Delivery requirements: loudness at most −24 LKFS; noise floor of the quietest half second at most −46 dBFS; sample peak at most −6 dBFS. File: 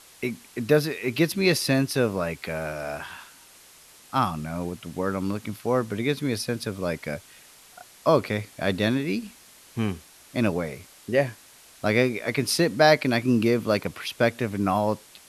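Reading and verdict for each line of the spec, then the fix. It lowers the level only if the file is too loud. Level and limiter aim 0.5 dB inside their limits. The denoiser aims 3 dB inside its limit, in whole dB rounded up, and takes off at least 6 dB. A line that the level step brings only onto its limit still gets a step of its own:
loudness −25.5 LKFS: in spec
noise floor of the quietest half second −52 dBFS: in spec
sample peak −5.5 dBFS: out of spec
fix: brickwall limiter −6.5 dBFS

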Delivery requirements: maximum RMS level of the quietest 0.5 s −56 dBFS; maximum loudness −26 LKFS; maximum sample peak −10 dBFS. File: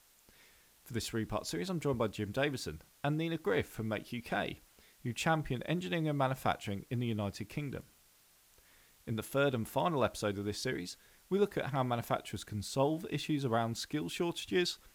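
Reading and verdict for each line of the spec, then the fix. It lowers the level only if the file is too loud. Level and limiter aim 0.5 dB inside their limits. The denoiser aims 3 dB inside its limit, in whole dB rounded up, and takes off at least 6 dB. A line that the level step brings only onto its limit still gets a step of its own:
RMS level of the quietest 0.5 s −66 dBFS: in spec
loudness −35.5 LKFS: in spec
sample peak −17.0 dBFS: in spec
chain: no processing needed

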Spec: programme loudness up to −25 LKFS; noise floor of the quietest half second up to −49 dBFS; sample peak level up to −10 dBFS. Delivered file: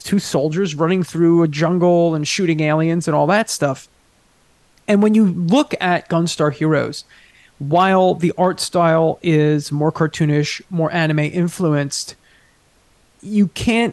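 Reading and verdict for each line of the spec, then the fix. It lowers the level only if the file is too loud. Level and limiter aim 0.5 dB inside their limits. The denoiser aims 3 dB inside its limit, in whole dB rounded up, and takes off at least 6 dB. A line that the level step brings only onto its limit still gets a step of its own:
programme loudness −17.0 LKFS: out of spec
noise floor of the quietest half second −56 dBFS: in spec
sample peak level −4.0 dBFS: out of spec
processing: level −8.5 dB

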